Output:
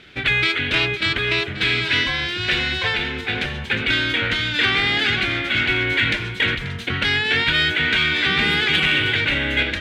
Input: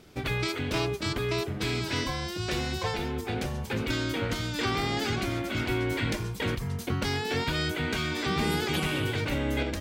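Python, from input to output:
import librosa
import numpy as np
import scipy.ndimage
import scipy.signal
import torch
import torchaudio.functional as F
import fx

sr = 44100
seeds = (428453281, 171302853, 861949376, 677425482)

y = fx.band_shelf(x, sr, hz=2400.0, db=14.5, octaves=1.7)
y = y + 10.0 ** (-15.0 / 20.0) * np.pad(y, (int(535 * sr / 1000.0), 0))[:len(y)]
y = np.clip(10.0 ** (10.0 / 20.0) * y, -1.0, 1.0) / 10.0 ** (10.0 / 20.0)
y = fx.air_absorb(y, sr, metres=55.0)
y = fx.cheby_harmonics(y, sr, harmonics=(5,), levels_db=(-37,), full_scale_db=-10.0)
y = y * 10.0 ** (2.0 / 20.0)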